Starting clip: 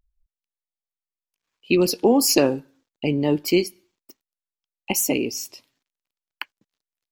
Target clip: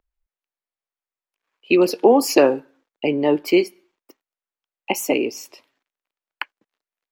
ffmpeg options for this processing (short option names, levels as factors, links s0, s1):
-filter_complex "[0:a]acrossover=split=310 2700:gain=0.158 1 0.224[s0][s1][s2];[s0][s1][s2]amix=inputs=3:normalize=0,volume=2.11"